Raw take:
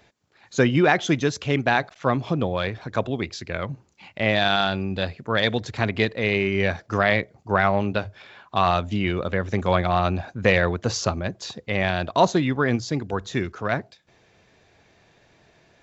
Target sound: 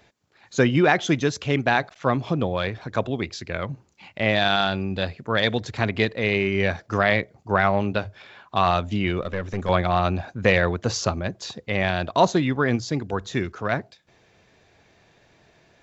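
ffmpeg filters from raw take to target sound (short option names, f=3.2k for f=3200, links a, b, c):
-filter_complex "[0:a]asettb=1/sr,asplit=3[a][b][c];[a]atrim=end=9.214[d];[b]atrim=start=9.21:end=9.69,asetpts=PTS-STARTPTS,afade=t=in:d=0.004:c=qsin,afade=t=out:st=0.476:d=0.004:c=qsin,aeval=exprs='(tanh(7.08*val(0)+0.5)-tanh(0.5))/7.08':c=same[e];[c]atrim=start=9.686[f];[d][e]acrossfade=d=0.004:c1=hsin:c2=qsin[g];[g][f]acrossfade=d=0.004:c1=qsin:c2=hsin"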